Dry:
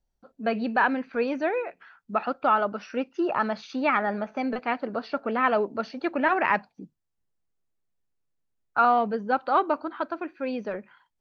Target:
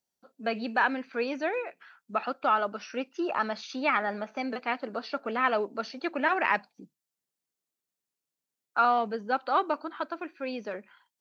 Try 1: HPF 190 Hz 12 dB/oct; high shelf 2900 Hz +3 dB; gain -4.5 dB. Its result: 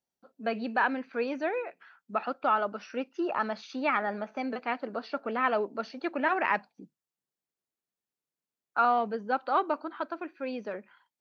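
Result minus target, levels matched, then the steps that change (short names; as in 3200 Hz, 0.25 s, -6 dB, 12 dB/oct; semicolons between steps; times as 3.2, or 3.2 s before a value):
8000 Hz band -5.5 dB
change: high shelf 2900 Hz +11 dB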